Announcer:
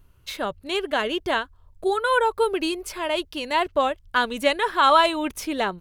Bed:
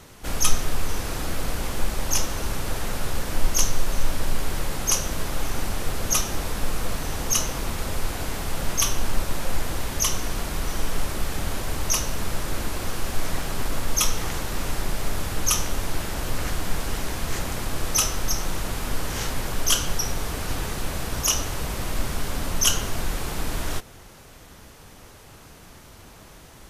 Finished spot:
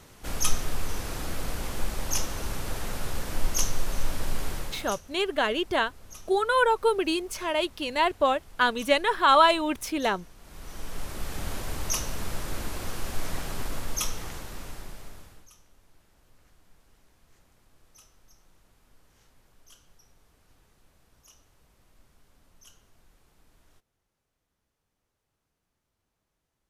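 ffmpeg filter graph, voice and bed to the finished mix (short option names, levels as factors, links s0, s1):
-filter_complex "[0:a]adelay=4450,volume=0.841[s0];[1:a]volume=5.01,afade=t=out:st=4.47:d=0.54:silence=0.105925,afade=t=in:st=10.39:d=1.09:silence=0.112202,afade=t=out:st=13.51:d=1.98:silence=0.0354813[s1];[s0][s1]amix=inputs=2:normalize=0"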